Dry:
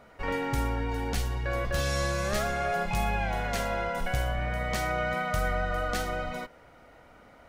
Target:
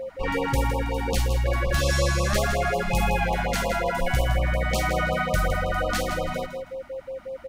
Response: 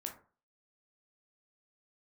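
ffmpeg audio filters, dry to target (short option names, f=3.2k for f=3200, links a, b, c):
-af "aecho=1:1:161|322|483:0.355|0.0993|0.0278,aeval=exprs='val(0)+0.0178*sin(2*PI*530*n/s)':c=same,afftfilt=real='re*(1-between(b*sr/1024,410*pow(1800/410,0.5+0.5*sin(2*PI*5.5*pts/sr))/1.41,410*pow(1800/410,0.5+0.5*sin(2*PI*5.5*pts/sr))*1.41))':imag='im*(1-between(b*sr/1024,410*pow(1800/410,0.5+0.5*sin(2*PI*5.5*pts/sr))/1.41,410*pow(1800/410,0.5+0.5*sin(2*PI*5.5*pts/sr))*1.41))':win_size=1024:overlap=0.75,volume=5.5dB"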